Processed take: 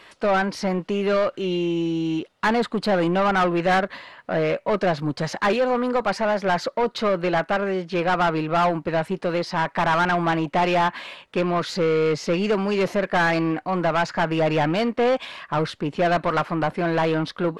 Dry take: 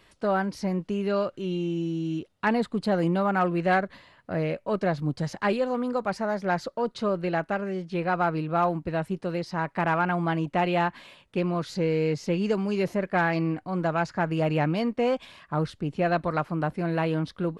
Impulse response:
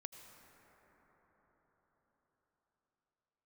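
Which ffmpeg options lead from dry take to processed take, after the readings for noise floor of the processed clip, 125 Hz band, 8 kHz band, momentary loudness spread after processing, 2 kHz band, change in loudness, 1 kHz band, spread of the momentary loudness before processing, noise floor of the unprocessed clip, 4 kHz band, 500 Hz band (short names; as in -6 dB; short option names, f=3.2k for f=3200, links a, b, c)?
-54 dBFS, +1.0 dB, n/a, 5 LU, +6.0 dB, +4.5 dB, +5.5 dB, 6 LU, -62 dBFS, +9.5 dB, +5.5 dB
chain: -filter_complex "[0:a]asplit=2[a][b];[b]highpass=f=720:p=1,volume=20dB,asoftclip=type=tanh:threshold=-12dB[c];[a][c]amix=inputs=2:normalize=0,lowpass=f=3.1k:p=1,volume=-6dB"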